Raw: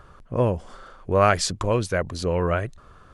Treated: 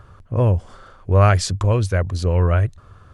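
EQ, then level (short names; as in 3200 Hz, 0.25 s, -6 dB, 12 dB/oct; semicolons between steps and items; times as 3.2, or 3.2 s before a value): bell 95 Hz +13.5 dB 0.75 oct; 0.0 dB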